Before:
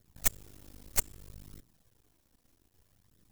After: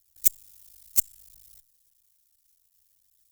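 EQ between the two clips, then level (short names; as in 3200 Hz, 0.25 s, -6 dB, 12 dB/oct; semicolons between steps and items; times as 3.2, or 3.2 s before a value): passive tone stack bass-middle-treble 10-0-10; high shelf 2800 Hz +10.5 dB; high shelf 6900 Hz +7.5 dB; -8.0 dB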